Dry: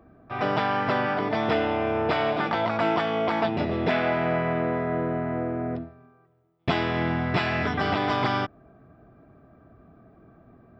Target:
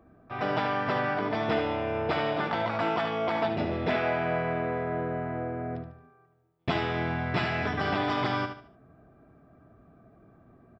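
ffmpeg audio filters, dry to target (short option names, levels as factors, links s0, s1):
-af "aecho=1:1:74|148|222|296:0.398|0.131|0.0434|0.0143,volume=0.631"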